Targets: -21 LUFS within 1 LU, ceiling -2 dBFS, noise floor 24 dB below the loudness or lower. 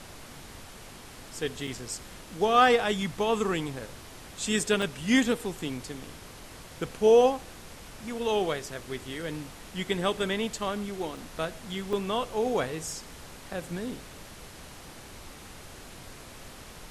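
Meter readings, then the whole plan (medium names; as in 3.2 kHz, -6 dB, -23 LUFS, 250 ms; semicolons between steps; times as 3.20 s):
dropouts 4; longest dropout 3.3 ms; noise floor -47 dBFS; noise floor target -53 dBFS; loudness -28.5 LUFS; peak level -10.0 dBFS; loudness target -21.0 LUFS
-> interpolate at 1.67/4.82/11.17/11.93 s, 3.3 ms; noise print and reduce 6 dB; trim +7.5 dB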